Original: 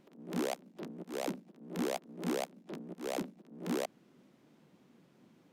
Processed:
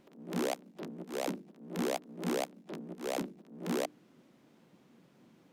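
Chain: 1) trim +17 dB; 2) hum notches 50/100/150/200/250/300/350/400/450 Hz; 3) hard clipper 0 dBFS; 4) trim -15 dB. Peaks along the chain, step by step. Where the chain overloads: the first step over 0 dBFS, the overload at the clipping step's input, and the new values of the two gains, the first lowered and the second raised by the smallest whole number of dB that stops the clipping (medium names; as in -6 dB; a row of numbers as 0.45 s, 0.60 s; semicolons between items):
-5.5 dBFS, -5.5 dBFS, -5.5 dBFS, -20.5 dBFS; nothing clips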